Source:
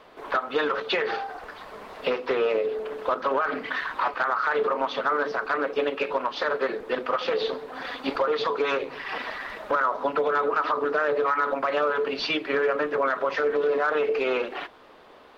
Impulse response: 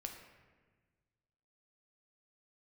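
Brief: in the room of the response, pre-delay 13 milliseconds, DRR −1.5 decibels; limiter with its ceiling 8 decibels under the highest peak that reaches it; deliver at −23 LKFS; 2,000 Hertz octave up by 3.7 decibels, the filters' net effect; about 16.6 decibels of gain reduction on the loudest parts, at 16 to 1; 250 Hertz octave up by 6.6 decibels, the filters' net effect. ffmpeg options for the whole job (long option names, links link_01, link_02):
-filter_complex "[0:a]equalizer=frequency=250:width_type=o:gain=8,equalizer=frequency=2000:width_type=o:gain=5,acompressor=threshold=-34dB:ratio=16,alimiter=level_in=6dB:limit=-24dB:level=0:latency=1,volume=-6dB,asplit=2[link_01][link_02];[1:a]atrim=start_sample=2205,adelay=13[link_03];[link_02][link_03]afir=irnorm=-1:irlink=0,volume=4.5dB[link_04];[link_01][link_04]amix=inputs=2:normalize=0,volume=13dB"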